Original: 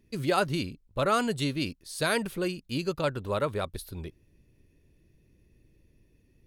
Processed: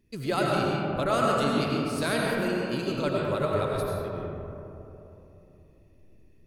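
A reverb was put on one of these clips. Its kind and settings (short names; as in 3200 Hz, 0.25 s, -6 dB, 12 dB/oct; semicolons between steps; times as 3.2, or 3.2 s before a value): digital reverb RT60 3.3 s, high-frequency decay 0.3×, pre-delay 60 ms, DRR -3.5 dB; gain -3 dB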